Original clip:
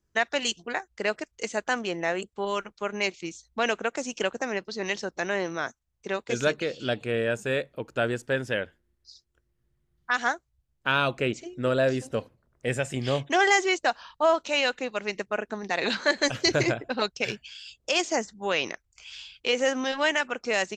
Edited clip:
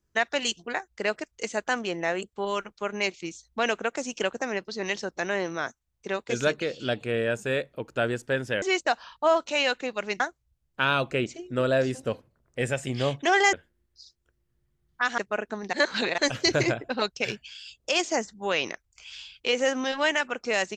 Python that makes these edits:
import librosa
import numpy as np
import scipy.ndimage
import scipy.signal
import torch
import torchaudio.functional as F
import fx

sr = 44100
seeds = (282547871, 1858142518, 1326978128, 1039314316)

y = fx.edit(x, sr, fx.swap(start_s=8.62, length_s=1.65, other_s=13.6, other_length_s=1.58),
    fx.reverse_span(start_s=15.73, length_s=0.45), tone=tone)